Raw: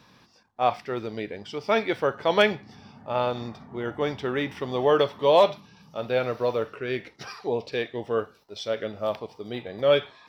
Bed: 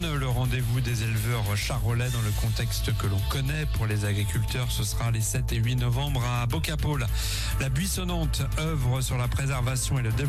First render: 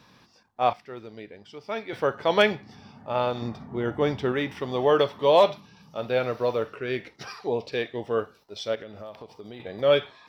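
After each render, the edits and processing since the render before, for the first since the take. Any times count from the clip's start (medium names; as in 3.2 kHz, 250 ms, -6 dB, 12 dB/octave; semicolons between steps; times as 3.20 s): 0.73–1.93 s: gain -9 dB; 3.42–4.32 s: bass shelf 470 Hz +5.5 dB; 8.75–9.60 s: compression, threshold -37 dBFS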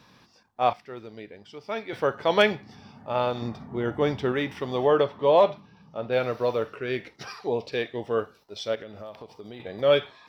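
4.86–6.11 s: low-pass 2.1 kHz -> 1.4 kHz 6 dB/octave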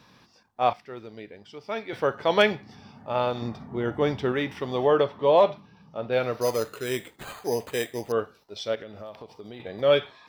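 6.41–8.12 s: careless resampling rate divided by 8×, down none, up hold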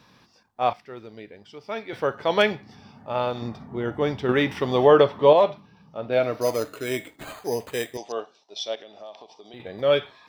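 4.29–5.33 s: gain +6 dB; 6.07–7.39 s: small resonant body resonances 290/640/2200 Hz, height 11 dB, ringing for 90 ms; 7.97–9.54 s: cabinet simulation 380–7300 Hz, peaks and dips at 490 Hz -6 dB, 720 Hz +6 dB, 1.4 kHz -10 dB, 2 kHz -4 dB, 3.5 kHz +6 dB, 5.8 kHz +6 dB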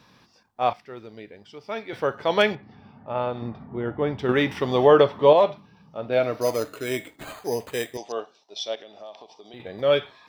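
2.55–4.19 s: distance through air 320 m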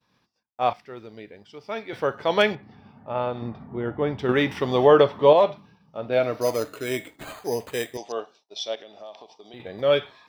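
expander -47 dBFS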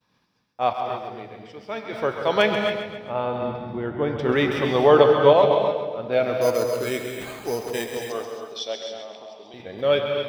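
two-band feedback delay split 620 Hz, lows 186 ms, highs 133 ms, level -8.5 dB; gated-style reverb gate 300 ms rising, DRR 5 dB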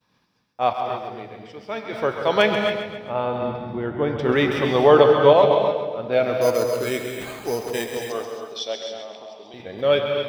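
trim +1.5 dB; peak limiter -2 dBFS, peak gain reduction 1 dB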